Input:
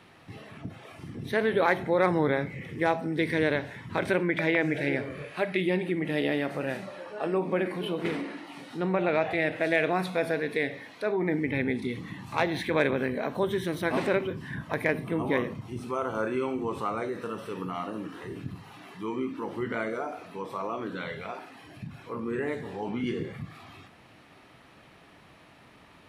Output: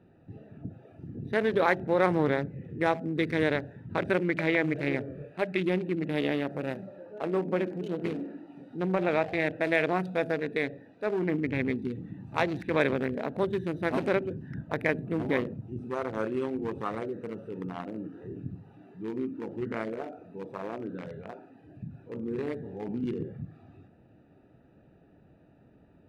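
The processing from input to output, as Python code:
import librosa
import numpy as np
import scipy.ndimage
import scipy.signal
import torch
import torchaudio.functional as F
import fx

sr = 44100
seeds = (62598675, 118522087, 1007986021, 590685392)

y = fx.wiener(x, sr, points=41)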